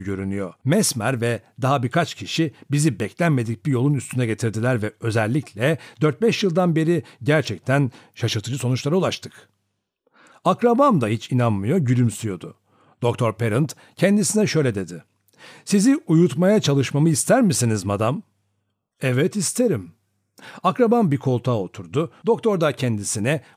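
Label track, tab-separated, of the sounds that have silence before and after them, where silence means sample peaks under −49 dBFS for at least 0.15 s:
10.070000	12.530000	sound
12.750000	15.020000	sound
15.280000	18.210000	sound
19.000000	19.910000	sound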